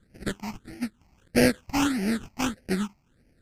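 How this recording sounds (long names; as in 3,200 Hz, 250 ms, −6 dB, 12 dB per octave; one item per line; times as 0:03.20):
aliases and images of a low sample rate 1,100 Hz, jitter 20%
phaser sweep stages 8, 1.6 Hz, lowest notch 460–1,100 Hz
MP3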